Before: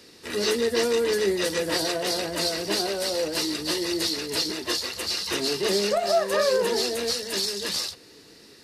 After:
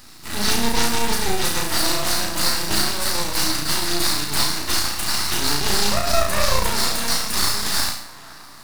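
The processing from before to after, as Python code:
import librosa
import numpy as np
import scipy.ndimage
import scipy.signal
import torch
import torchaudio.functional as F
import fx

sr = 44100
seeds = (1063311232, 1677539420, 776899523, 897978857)

p1 = fx.high_shelf(x, sr, hz=7600.0, db=11.5)
p2 = p1 + fx.room_flutter(p1, sr, wall_m=5.9, rt60_s=0.58, dry=0)
p3 = np.maximum(p2, 0.0)
p4 = fx.sample_hold(p3, sr, seeds[0], rate_hz=3200.0, jitter_pct=0)
p5 = p3 + (p4 * 10.0 ** (-4.5 / 20.0))
p6 = fx.peak_eq(p5, sr, hz=460.0, db=-14.5, octaves=0.87)
p7 = fx.echo_banded(p6, sr, ms=522, feedback_pct=62, hz=1100.0, wet_db=-16.5)
y = p7 * 10.0 ** (4.5 / 20.0)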